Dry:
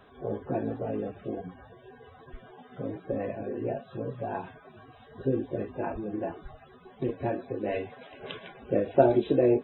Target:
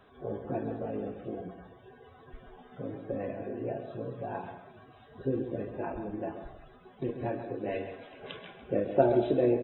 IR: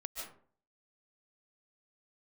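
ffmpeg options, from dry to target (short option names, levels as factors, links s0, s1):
-filter_complex "[0:a]asplit=2[s0][s1];[s1]adelay=134.1,volume=0.355,highshelf=f=4000:g=-3.02[s2];[s0][s2]amix=inputs=2:normalize=0,asplit=2[s3][s4];[1:a]atrim=start_sample=2205,adelay=49[s5];[s4][s5]afir=irnorm=-1:irlink=0,volume=0.251[s6];[s3][s6]amix=inputs=2:normalize=0,volume=0.668"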